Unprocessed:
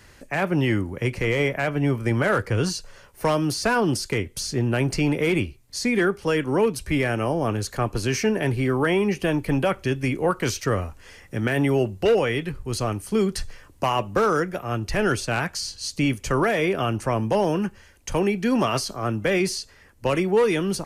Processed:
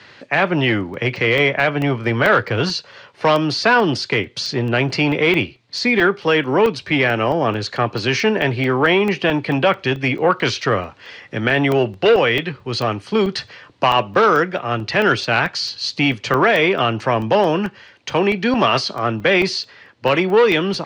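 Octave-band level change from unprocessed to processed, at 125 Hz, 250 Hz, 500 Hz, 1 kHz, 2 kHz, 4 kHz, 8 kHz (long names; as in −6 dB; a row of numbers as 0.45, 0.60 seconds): +2.0, +3.5, +6.0, +8.0, +9.5, +10.0, −3.5 decibels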